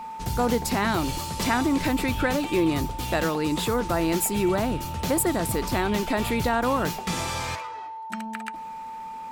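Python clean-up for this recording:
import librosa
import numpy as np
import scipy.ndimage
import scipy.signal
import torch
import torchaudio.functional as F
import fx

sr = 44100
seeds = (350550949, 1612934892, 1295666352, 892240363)

y = fx.fix_declick_ar(x, sr, threshold=6.5)
y = fx.notch(y, sr, hz=890.0, q=30.0)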